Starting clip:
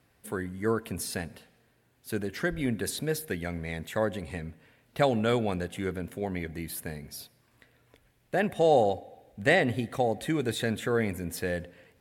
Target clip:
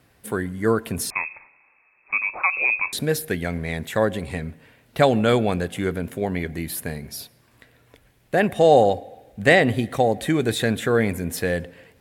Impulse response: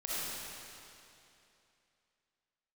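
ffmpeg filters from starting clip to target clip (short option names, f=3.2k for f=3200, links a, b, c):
-filter_complex "[0:a]asettb=1/sr,asplit=3[a][b][c];[a]atrim=end=1.104[d];[b]atrim=start=1.1:end=2.93,asetpts=PTS-STARTPTS,afade=t=in:d=0.004:c=qsin,afade=t=out:st=1.826:d=0.004:c=qsin,lowpass=f=2.3k:t=q:w=0.5098,lowpass=f=2.3k:t=q:w=0.6013,lowpass=f=2.3k:t=q:w=0.9,lowpass=f=2.3k:t=q:w=2.563,afreqshift=-2700[e];[c]atrim=start=2.926[f];[d][e]acrossfade=d=0.004:c1=hsin:c2=qsin[g];[g][f]acrossfade=d=0.004:c1=qsin:c2=hsin,volume=7.5dB"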